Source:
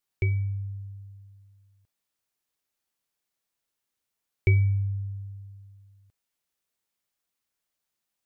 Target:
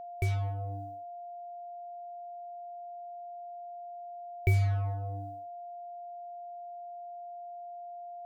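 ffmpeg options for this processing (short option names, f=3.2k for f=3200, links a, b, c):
-af "acrusher=bits=5:mix=0:aa=0.5,aeval=exprs='val(0)+0.0158*sin(2*PI*700*n/s)':c=same,volume=-4.5dB"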